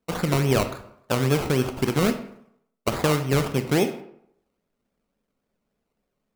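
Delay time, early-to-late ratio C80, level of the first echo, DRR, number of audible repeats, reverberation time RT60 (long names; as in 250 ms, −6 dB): no echo audible, 13.5 dB, no echo audible, 8.0 dB, no echo audible, 0.70 s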